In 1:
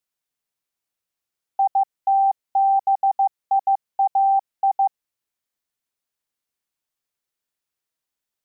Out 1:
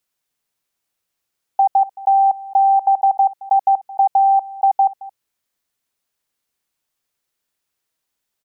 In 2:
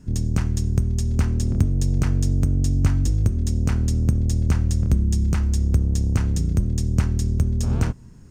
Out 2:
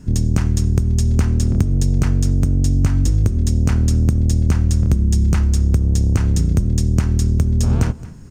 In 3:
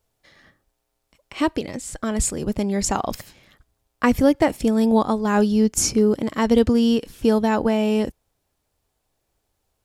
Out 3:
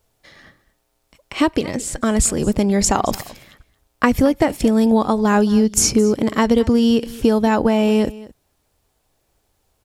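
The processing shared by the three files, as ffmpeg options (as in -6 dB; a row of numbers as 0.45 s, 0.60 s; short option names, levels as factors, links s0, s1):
-af "acompressor=threshold=0.126:ratio=6,aecho=1:1:220:0.106,volume=2.24"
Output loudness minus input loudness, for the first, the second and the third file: +4.5 LU, +4.5 LU, +3.5 LU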